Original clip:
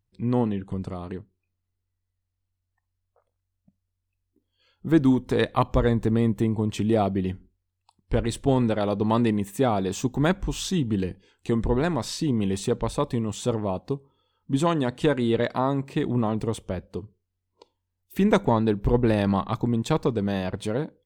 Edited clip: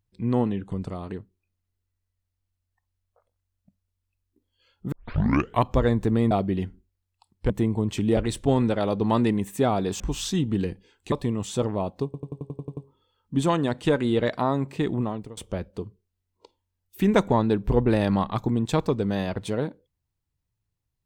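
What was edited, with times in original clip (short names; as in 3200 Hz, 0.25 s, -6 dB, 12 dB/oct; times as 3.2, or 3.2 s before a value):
4.92 tape start 0.71 s
6.31–6.98 move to 8.17
10–10.39 cut
11.51–13.01 cut
13.94 stutter 0.09 s, 9 plays
16.05–16.54 fade out, to -22.5 dB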